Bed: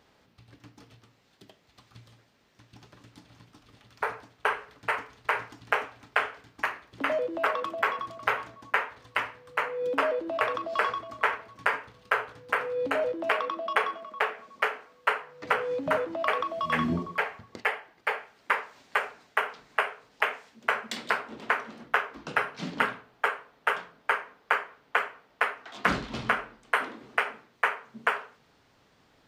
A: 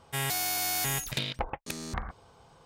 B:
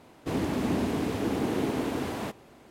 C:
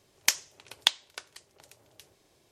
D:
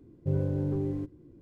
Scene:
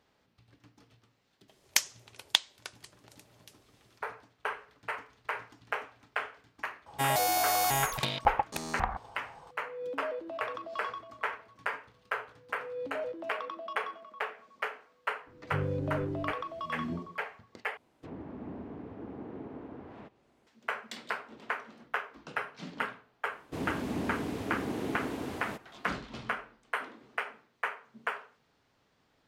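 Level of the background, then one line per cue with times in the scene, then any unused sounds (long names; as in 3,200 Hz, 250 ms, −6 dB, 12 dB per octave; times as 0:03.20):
bed −8 dB
0:01.48: mix in C −2 dB
0:06.86: mix in A −1.5 dB + parametric band 830 Hz +12.5 dB 0.93 octaves
0:15.26: mix in D −5 dB
0:17.77: overwrite with B −14.5 dB + treble cut that deepens with the level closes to 1,400 Hz, closed at −27.5 dBFS
0:23.26: mix in B −6.5 dB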